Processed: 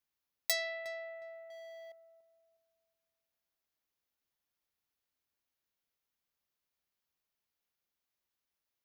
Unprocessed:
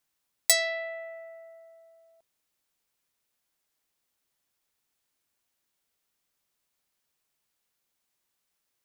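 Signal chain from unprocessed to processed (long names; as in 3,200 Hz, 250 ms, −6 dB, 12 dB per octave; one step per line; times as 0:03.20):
parametric band 70 Hz +9 dB 0.21 octaves
on a send: feedback echo with a low-pass in the loop 361 ms, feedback 32%, low-pass 1,400 Hz, level −10 dB
0:01.50–0:01.92: on the sum: leveller curve on the samples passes 5
parametric band 8,400 Hz −13 dB 0.34 octaves
level −8.5 dB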